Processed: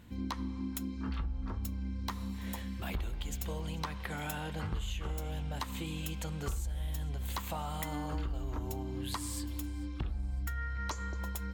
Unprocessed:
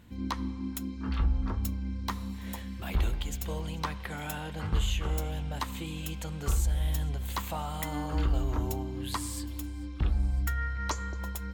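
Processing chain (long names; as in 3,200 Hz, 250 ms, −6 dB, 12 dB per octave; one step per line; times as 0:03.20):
downward compressor 6 to 1, threshold −33 dBFS, peak gain reduction 11 dB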